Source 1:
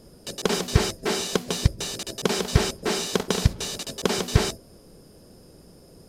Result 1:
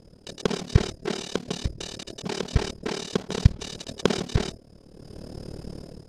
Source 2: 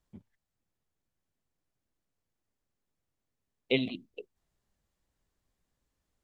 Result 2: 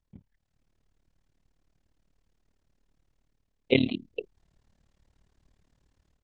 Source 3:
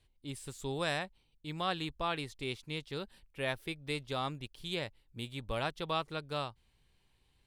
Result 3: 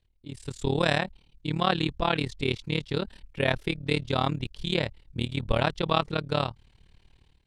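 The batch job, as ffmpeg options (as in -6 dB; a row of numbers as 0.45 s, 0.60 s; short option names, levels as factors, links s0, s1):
-af "lowpass=6700,lowshelf=f=260:g=6,bandreject=f=1200:w=23,dynaudnorm=f=290:g=3:m=4.73,tremolo=f=37:d=0.919,volume=0.891"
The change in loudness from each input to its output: -3.0 LU, +5.0 LU, +9.5 LU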